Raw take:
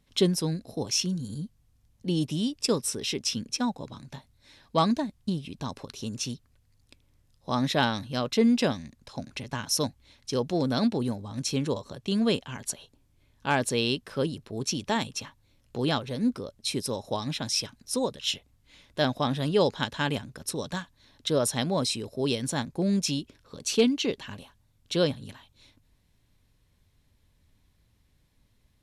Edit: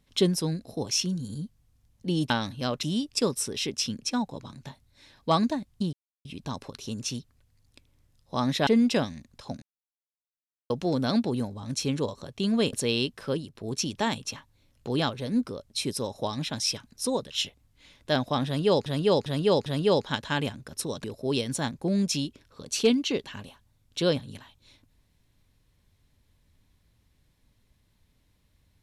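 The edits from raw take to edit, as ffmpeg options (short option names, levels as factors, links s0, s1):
-filter_complex "[0:a]asplit=13[s0][s1][s2][s3][s4][s5][s6][s7][s8][s9][s10][s11][s12];[s0]atrim=end=2.302[s13];[s1]atrim=start=7.818:end=8.352[s14];[s2]atrim=start=2.298:end=5.4,asetpts=PTS-STARTPTS,afade=t=out:st=3.098:d=0.004:c=hsin,apad=pad_dur=0.32[s15];[s3]atrim=start=5.4:end=7.822,asetpts=PTS-STARTPTS,afade=t=in:d=0.004:c=hsin[s16];[s4]atrim=start=8.348:end=9.3,asetpts=PTS-STARTPTS,afade=t=out:st=0.948:d=0.004:c=hsin[s17];[s5]atrim=start=9.3:end=10.38,asetpts=PTS-STARTPTS,volume=0[s18];[s6]atrim=start=10.38:end=12.412,asetpts=PTS-STARTPTS,afade=t=in:d=0.004:c=hsin[s19];[s7]atrim=start=13.618:end=14.44,asetpts=PTS-STARTPTS,afade=t=out:st=0.532:d=0.29:silence=0.398107[s20];[s8]atrim=start=14.44:end=19.752,asetpts=PTS-STARTPTS,afade=t=in:d=0.004:c=hsin:silence=0.398107[s21];[s9]atrim=start=19.348:end=19.752[s22];[s10]atrim=start=19.348:end=19.752[s23];[s11]atrim=start=19.348:end=20.732[s24];[s12]atrim=start=21.978[s25];[s13][s14]acrossfade=d=0.004:c1=hsin:c2=hsin[s26];[s15][s16]concat=n=2:v=0:a=1[s27];[s26][s27]acrossfade=d=0.004:c1=hsin:c2=hsin[s28];[s17][s18][s19]concat=n=3:v=0:a=1[s29];[s28][s29]acrossfade=d=0.004:c1=hsin:c2=hsin[s30];[s20][s21]concat=n=2:v=0:a=1[s31];[s30][s31]acrossfade=d=0.004:c1=hsin:c2=hsin[s32];[s32][s22]acrossfade=d=0.004:c1=hsin:c2=hsin[s33];[s33][s23]acrossfade=d=0.004:c1=hsin:c2=hsin[s34];[s34][s24]acrossfade=d=0.004:c1=hsin:c2=hsin[s35];[s35][s25]acrossfade=d=0.004:c1=hsin:c2=hsin"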